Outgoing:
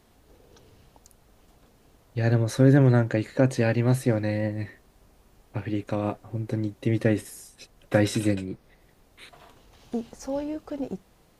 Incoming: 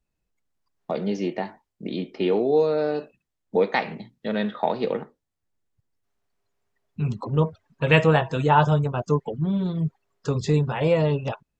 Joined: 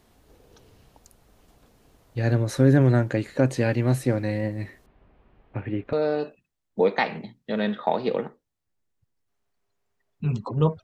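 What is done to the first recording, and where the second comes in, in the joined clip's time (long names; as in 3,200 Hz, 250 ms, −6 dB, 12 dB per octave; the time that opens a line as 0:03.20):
outgoing
0:04.86–0:05.93: low-pass filter 2,800 Hz 24 dB per octave
0:05.93: continue with incoming from 0:02.69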